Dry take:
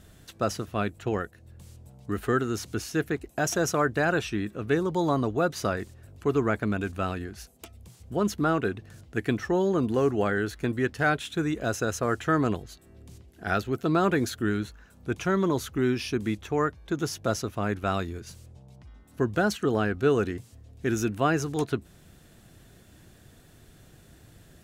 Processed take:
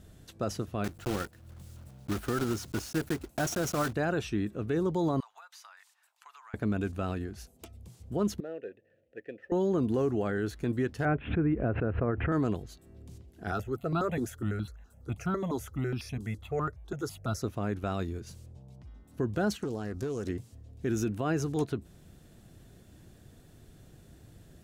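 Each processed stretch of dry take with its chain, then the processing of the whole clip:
0.84–3.95 s: block-companded coder 3-bit + peaking EQ 1.4 kHz +5.5 dB 0.23 oct + band-stop 430 Hz, Q 8
5.20–6.54 s: elliptic high-pass 890 Hz, stop band 60 dB + compression, threshold -44 dBFS
8.40–9.52 s: median filter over 9 samples + upward compressor, threshold -43 dBFS + vowel filter e
11.05–12.32 s: steep low-pass 2.6 kHz 48 dB/octave + tilt EQ -1.5 dB/octave + swell ahead of each attack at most 130 dB/s
13.51–17.42 s: comb 1.5 ms, depth 32% + stepped phaser 12 Hz 570–1900 Hz
19.63–20.29 s: resonant high shelf 4 kHz +10.5 dB, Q 1.5 + compression 12:1, threshold -28 dBFS + loudspeaker Doppler distortion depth 0.28 ms
whole clip: peaking EQ 1.7 kHz -6 dB 2.5 oct; peak limiter -20 dBFS; treble shelf 4.9 kHz -5.5 dB

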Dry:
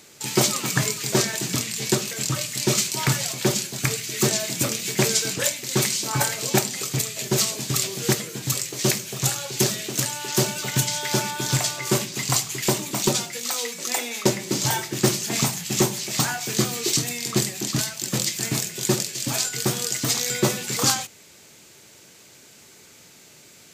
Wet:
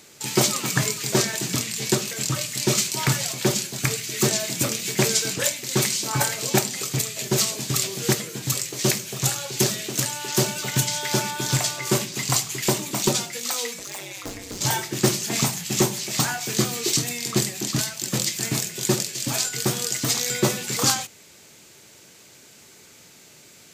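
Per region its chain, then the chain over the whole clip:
13.79–14.61 s: hard clipper -22 dBFS + compression 3:1, threshold -30 dBFS + ring modulator 97 Hz
whole clip: none

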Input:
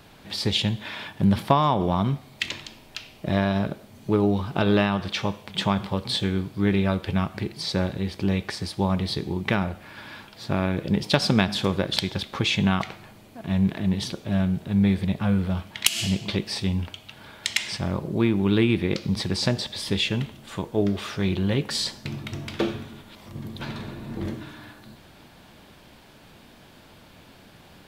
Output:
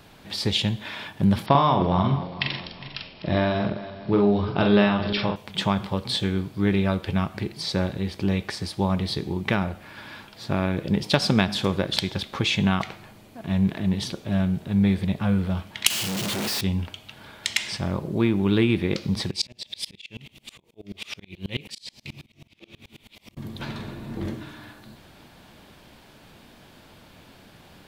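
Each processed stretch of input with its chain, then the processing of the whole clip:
1.46–5.36 s: backward echo that repeats 204 ms, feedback 58%, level -13 dB + brick-wall FIR low-pass 5.6 kHz + doubling 44 ms -4.5 dB
15.90–16.61 s: one-bit comparator + high-pass 110 Hz
19.31–23.37 s: resonant high shelf 1.9 kHz +6.5 dB, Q 3 + slow attack 363 ms + sawtooth tremolo in dB swelling 9.3 Hz, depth 30 dB
whole clip: none

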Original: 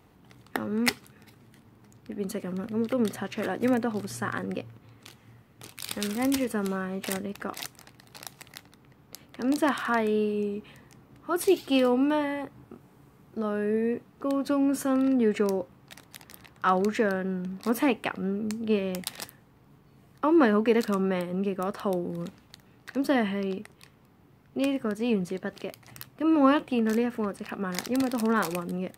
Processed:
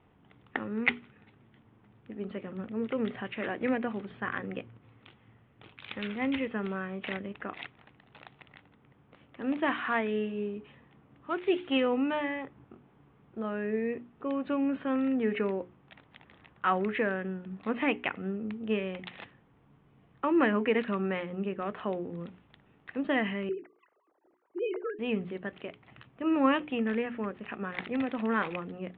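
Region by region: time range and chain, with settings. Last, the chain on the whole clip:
8.55–11.77 s: dead-time distortion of 0.071 ms + high-pass 44 Hz
23.49–24.99 s: formants replaced by sine waves + low-pass 1.4 kHz
whole clip: steep low-pass 3.5 kHz 72 dB/octave; hum notches 60/120/180/240/300/360/420 Hz; dynamic bell 2.2 kHz, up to +7 dB, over -48 dBFS, Q 1.7; trim -4.5 dB

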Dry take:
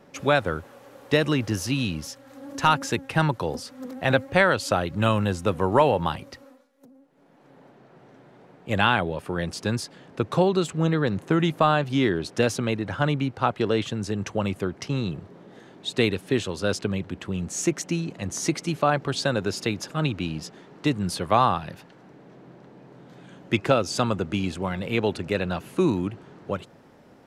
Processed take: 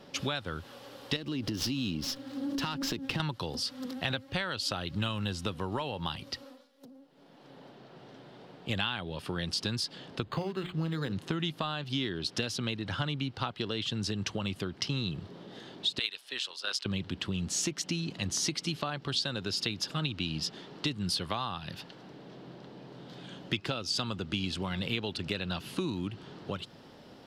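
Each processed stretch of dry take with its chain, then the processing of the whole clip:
1.16–3.20 s: peaking EQ 290 Hz +11 dB 1.7 oct + compression 4:1, threshold -25 dBFS + sliding maximum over 3 samples
10.24–11.13 s: hum notches 60/120/180/240/300/360/420/480 Hz + decimation joined by straight lines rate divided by 8×
15.99–16.86 s: high-pass 990 Hz + AM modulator 130 Hz, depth 35% + three bands expanded up and down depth 100%
whole clip: high-order bell 3.9 kHz +9.5 dB 1.1 oct; compression 6:1, threshold -28 dBFS; dynamic bell 560 Hz, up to -6 dB, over -48 dBFS, Q 0.99

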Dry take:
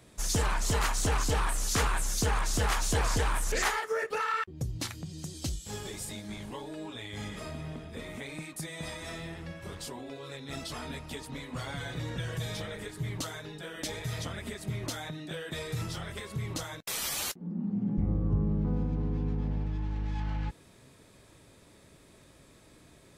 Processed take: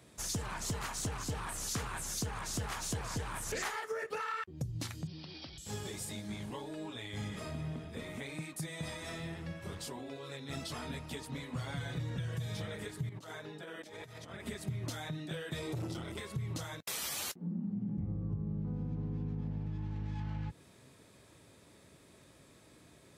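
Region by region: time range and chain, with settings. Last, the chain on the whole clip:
5.07–5.58 s: high-pass 180 Hz 6 dB/octave + compression 10:1, threshold -40 dBFS + careless resampling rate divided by 4×, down none, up filtered
13.09–14.46 s: high-pass 250 Hz 6 dB/octave + treble shelf 2.1 kHz -8.5 dB + compressor with a negative ratio -44 dBFS, ratio -0.5
15.60–16.19 s: Butterworth band-stop 1.7 kHz, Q 5.9 + peaking EQ 320 Hz +13.5 dB 0.39 oct + transformer saturation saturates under 540 Hz
whole clip: high-pass 68 Hz 12 dB/octave; dynamic bell 120 Hz, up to +8 dB, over -46 dBFS, Q 0.82; compression 6:1, threshold -32 dBFS; trim -2.5 dB

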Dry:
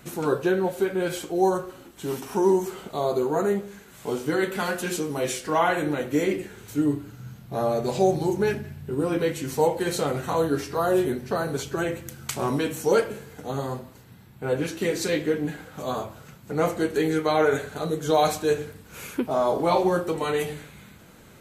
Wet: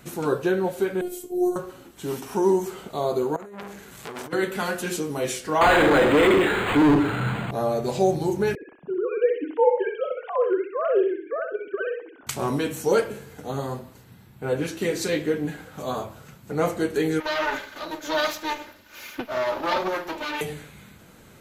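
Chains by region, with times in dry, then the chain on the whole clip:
1.01–1.56 s: FFT filter 390 Hz 0 dB, 1.2 kHz -16 dB, 1.7 kHz -16 dB, 4.5 kHz -10 dB, 12 kHz +5 dB + robot voice 358 Hz
3.36–4.33 s: compressor with a negative ratio -30 dBFS, ratio -0.5 + transformer saturation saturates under 2.8 kHz
5.61–7.51 s: hum notches 50/100/150/200/250/300 Hz + overdrive pedal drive 35 dB, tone 6.4 kHz, clips at -9.5 dBFS + decimation joined by straight lines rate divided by 8×
8.55–12.27 s: formants replaced by sine waves + feedback delay 64 ms, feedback 30%, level -6 dB
17.20–20.41 s: comb filter that takes the minimum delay 3.3 ms + boxcar filter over 5 samples + tilt EQ +3 dB/octave
whole clip: none

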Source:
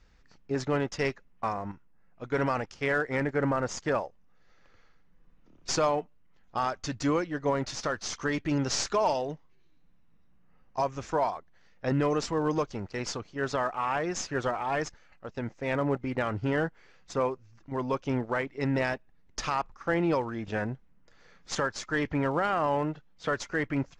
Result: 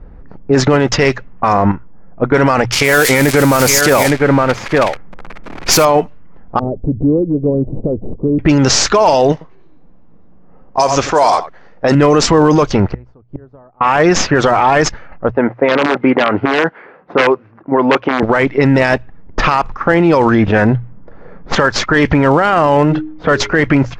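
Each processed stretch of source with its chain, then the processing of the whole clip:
2.72–5.85 s: zero-crossing glitches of -25 dBFS + peaking EQ 2.3 kHz +5.5 dB 0.27 oct + delay 863 ms -9 dB
6.59–8.39 s: inverse Chebyshev low-pass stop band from 1.6 kHz, stop band 60 dB + compression 2.5:1, threshold -41 dBFS
9.32–11.95 s: tone controls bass -8 dB, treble +14 dB + delay 90 ms -15 dB
12.92–13.81 s: bass shelf 160 Hz +11.5 dB + inverted gate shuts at -30 dBFS, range -37 dB
15.32–18.23 s: integer overflow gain 20 dB + band-pass 280–2400 Hz
22.55–23.62 s: de-hum 103.3 Hz, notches 4 + dynamic bell 1.1 kHz, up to -3 dB, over -35 dBFS, Q 0.79
whole clip: hum notches 60/120 Hz; level-controlled noise filter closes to 670 Hz, open at -24 dBFS; loudness maximiser +27.5 dB; trim -1 dB

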